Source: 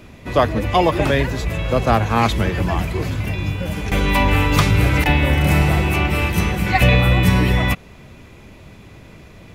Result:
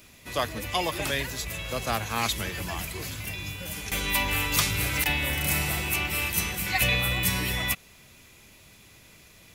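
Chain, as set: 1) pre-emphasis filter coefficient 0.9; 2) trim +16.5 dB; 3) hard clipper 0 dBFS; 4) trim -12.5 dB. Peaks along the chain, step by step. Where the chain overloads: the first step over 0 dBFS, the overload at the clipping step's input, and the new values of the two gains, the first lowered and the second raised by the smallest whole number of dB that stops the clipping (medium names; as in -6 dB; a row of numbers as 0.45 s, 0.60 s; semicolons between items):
-11.0 dBFS, +5.5 dBFS, 0.0 dBFS, -12.5 dBFS; step 2, 5.5 dB; step 2 +10.5 dB, step 4 -6.5 dB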